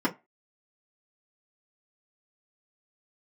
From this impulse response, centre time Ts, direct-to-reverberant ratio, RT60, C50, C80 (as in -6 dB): 11 ms, -7.0 dB, 0.25 s, 19.0 dB, 26.5 dB